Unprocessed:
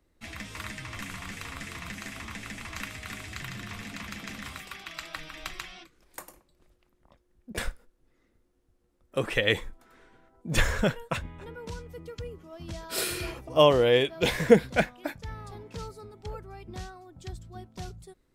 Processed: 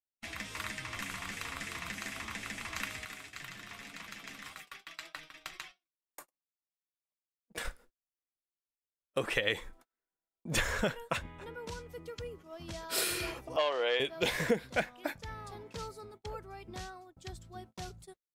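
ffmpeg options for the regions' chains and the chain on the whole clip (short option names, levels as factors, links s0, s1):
-filter_complex "[0:a]asettb=1/sr,asplit=3[s0][s1][s2];[s0]atrim=end=3.054[s3];[s1]atrim=start=3.05:end=7.65,asetpts=PTS-STARTPTS,afade=t=in:d=0.004:c=qsin,afade=t=out:st=4.596:d=0.004:c=qsin,aeval=exprs='if(lt(val(0),0),0.708*val(0),val(0))':c=same,lowshelf=f=130:g=-6.5,flanger=delay=6.1:depth=1.3:regen=61:speed=2:shape=triangular[s4];[s2]atrim=start=7.646[s5];[s3][s4]acrossfade=d=0.004:c1=hsin:c2=qsin[s6];[s6][s5]acrossfade=d=0.004:c1=qsin:c2=hsin,asettb=1/sr,asplit=3[s7][s8][s9];[s7]atrim=end=13.564[s10];[s8]atrim=start=13.56:end=14,asetpts=PTS-STARTPTS,afade=t=in:d=0.004:c=qsin,afade=t=out:st=0.436:d=0.004:c=qsin,asoftclip=type=hard:threshold=0.2,highpass=620,lowpass=4400[s11];[s9]atrim=start=13.996[s12];[s10][s11]acrossfade=d=0.004:c1=hsin:c2=qsin[s13];[s13][s12]acrossfade=d=0.004:c1=qsin:c2=hsin,agate=range=0.0126:threshold=0.00398:ratio=16:detection=peak,lowshelf=f=280:g=-8,acompressor=threshold=0.0447:ratio=4"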